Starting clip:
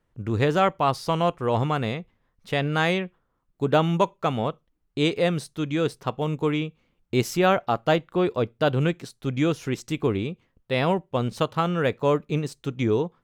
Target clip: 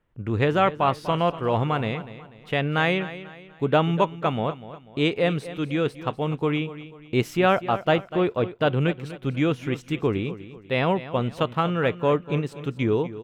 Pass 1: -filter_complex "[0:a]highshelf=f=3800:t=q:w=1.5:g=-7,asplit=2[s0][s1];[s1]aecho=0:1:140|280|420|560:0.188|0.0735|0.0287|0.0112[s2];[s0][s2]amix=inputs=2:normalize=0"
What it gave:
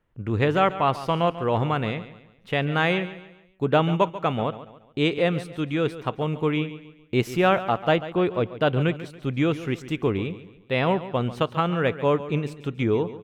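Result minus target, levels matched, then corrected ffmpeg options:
echo 105 ms early
-filter_complex "[0:a]highshelf=f=3800:t=q:w=1.5:g=-7,asplit=2[s0][s1];[s1]aecho=0:1:245|490|735|980:0.188|0.0735|0.0287|0.0112[s2];[s0][s2]amix=inputs=2:normalize=0"

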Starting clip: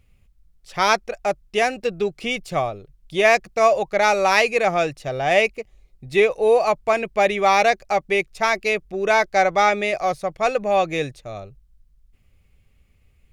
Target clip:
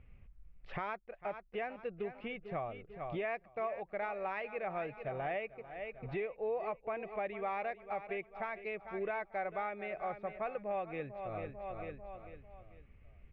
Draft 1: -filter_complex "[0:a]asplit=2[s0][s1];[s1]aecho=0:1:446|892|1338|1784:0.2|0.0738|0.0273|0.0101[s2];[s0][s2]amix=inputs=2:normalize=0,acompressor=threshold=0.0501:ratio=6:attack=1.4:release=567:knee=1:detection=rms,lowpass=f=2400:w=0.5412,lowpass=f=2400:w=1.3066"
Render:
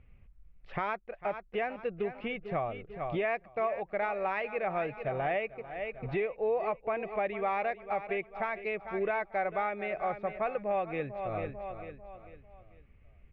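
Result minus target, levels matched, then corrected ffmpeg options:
compression: peak gain reduction -6.5 dB
-filter_complex "[0:a]asplit=2[s0][s1];[s1]aecho=0:1:446|892|1338|1784:0.2|0.0738|0.0273|0.0101[s2];[s0][s2]amix=inputs=2:normalize=0,acompressor=threshold=0.0211:ratio=6:attack=1.4:release=567:knee=1:detection=rms,lowpass=f=2400:w=0.5412,lowpass=f=2400:w=1.3066"

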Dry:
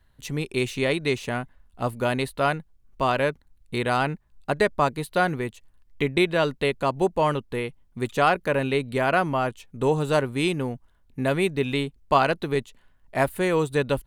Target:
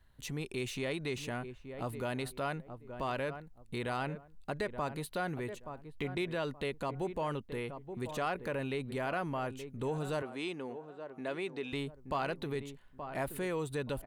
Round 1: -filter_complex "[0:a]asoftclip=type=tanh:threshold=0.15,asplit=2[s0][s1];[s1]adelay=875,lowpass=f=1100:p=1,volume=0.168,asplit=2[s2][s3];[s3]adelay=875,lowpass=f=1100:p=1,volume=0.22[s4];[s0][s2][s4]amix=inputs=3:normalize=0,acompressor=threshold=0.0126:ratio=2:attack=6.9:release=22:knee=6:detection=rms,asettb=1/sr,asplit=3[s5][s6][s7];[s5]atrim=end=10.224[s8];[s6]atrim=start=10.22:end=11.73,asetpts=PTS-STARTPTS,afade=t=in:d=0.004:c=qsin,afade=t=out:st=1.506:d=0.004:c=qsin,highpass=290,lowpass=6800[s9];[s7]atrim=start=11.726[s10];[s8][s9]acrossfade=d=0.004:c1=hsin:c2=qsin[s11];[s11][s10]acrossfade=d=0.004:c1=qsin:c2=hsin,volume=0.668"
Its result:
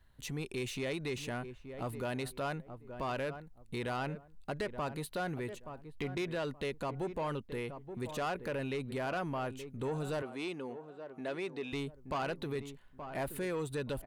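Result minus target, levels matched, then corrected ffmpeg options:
saturation: distortion +18 dB
-filter_complex "[0:a]asoftclip=type=tanh:threshold=0.596,asplit=2[s0][s1];[s1]adelay=875,lowpass=f=1100:p=1,volume=0.168,asplit=2[s2][s3];[s3]adelay=875,lowpass=f=1100:p=1,volume=0.22[s4];[s0][s2][s4]amix=inputs=3:normalize=0,acompressor=threshold=0.0126:ratio=2:attack=6.9:release=22:knee=6:detection=rms,asettb=1/sr,asplit=3[s5][s6][s7];[s5]atrim=end=10.224[s8];[s6]atrim=start=10.22:end=11.73,asetpts=PTS-STARTPTS,afade=t=in:d=0.004:c=qsin,afade=t=out:st=1.506:d=0.004:c=qsin,highpass=290,lowpass=6800[s9];[s7]atrim=start=11.726[s10];[s8][s9]acrossfade=d=0.004:c1=hsin:c2=qsin[s11];[s11][s10]acrossfade=d=0.004:c1=qsin:c2=hsin,volume=0.668"

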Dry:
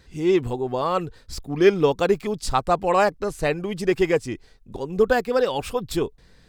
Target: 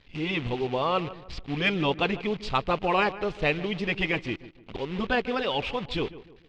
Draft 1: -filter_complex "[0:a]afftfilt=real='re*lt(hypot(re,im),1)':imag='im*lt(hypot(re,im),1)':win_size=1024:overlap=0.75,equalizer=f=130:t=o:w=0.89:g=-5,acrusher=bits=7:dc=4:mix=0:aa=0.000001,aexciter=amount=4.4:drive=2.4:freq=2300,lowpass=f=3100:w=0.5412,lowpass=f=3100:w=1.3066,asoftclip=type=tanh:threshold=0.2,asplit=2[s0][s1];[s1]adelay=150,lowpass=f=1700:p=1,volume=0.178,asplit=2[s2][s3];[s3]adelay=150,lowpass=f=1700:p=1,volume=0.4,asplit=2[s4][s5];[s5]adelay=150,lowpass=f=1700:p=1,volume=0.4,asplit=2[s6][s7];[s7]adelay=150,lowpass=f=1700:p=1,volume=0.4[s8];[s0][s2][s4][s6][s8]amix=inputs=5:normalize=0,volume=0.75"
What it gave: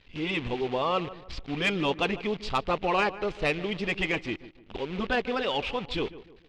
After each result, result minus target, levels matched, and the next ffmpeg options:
saturation: distortion +15 dB; 125 Hz band -2.5 dB
-filter_complex "[0:a]afftfilt=real='re*lt(hypot(re,im),1)':imag='im*lt(hypot(re,im),1)':win_size=1024:overlap=0.75,equalizer=f=130:t=o:w=0.89:g=-5,acrusher=bits=7:dc=4:mix=0:aa=0.000001,aexciter=amount=4.4:drive=2.4:freq=2300,lowpass=f=3100:w=0.5412,lowpass=f=3100:w=1.3066,asoftclip=type=tanh:threshold=0.596,asplit=2[s0][s1];[s1]adelay=150,lowpass=f=1700:p=1,volume=0.178,asplit=2[s2][s3];[s3]adelay=150,lowpass=f=1700:p=1,volume=0.4,asplit=2[s4][s5];[s5]adelay=150,lowpass=f=1700:p=1,volume=0.4,asplit=2[s6][s7];[s7]adelay=150,lowpass=f=1700:p=1,volume=0.4[s8];[s0][s2][s4][s6][s8]amix=inputs=5:normalize=0,volume=0.75"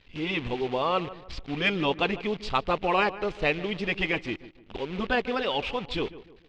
125 Hz band -3.0 dB
-filter_complex "[0:a]afftfilt=real='re*lt(hypot(re,im),1)':imag='im*lt(hypot(re,im),1)':win_size=1024:overlap=0.75,acrusher=bits=7:dc=4:mix=0:aa=0.000001,aexciter=amount=4.4:drive=2.4:freq=2300,lowpass=f=3100:w=0.5412,lowpass=f=3100:w=1.3066,asoftclip=type=tanh:threshold=0.596,asplit=2[s0][s1];[s1]adelay=150,lowpass=f=1700:p=1,volume=0.178,asplit=2[s2][s3];[s3]adelay=150,lowpass=f=1700:p=1,volume=0.4,asplit=2[s4][s5];[s5]adelay=150,lowpass=f=1700:p=1,volume=0.4,asplit=2[s6][s7];[s7]adelay=150,lowpass=f=1700:p=1,volume=0.4[s8];[s0][s2][s4][s6][s8]amix=inputs=5:normalize=0,volume=0.75"

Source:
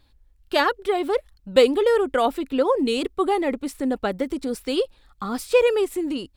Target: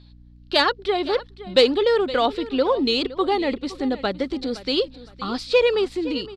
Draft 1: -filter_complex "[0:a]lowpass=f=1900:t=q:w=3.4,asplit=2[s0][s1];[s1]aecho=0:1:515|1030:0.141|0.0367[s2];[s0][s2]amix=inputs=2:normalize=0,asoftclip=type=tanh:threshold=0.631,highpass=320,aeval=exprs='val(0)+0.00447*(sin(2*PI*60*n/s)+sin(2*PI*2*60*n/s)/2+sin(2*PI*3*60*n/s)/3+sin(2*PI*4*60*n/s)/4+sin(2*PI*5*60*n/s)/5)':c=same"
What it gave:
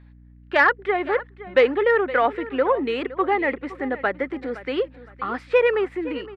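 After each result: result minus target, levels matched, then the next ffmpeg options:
4 kHz band -12.5 dB; 250 Hz band -3.5 dB
-filter_complex "[0:a]lowpass=f=4300:t=q:w=3.4,asplit=2[s0][s1];[s1]aecho=0:1:515|1030:0.141|0.0367[s2];[s0][s2]amix=inputs=2:normalize=0,asoftclip=type=tanh:threshold=0.631,highpass=320,aeval=exprs='val(0)+0.00447*(sin(2*PI*60*n/s)+sin(2*PI*2*60*n/s)/2+sin(2*PI*3*60*n/s)/3+sin(2*PI*4*60*n/s)/4+sin(2*PI*5*60*n/s)/5)':c=same"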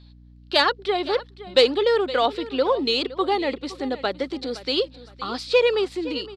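250 Hz band -3.0 dB
-filter_complex "[0:a]lowpass=f=4300:t=q:w=3.4,asplit=2[s0][s1];[s1]aecho=0:1:515|1030:0.141|0.0367[s2];[s0][s2]amix=inputs=2:normalize=0,asoftclip=type=tanh:threshold=0.631,aeval=exprs='val(0)+0.00447*(sin(2*PI*60*n/s)+sin(2*PI*2*60*n/s)/2+sin(2*PI*3*60*n/s)/3+sin(2*PI*4*60*n/s)/4+sin(2*PI*5*60*n/s)/5)':c=same"

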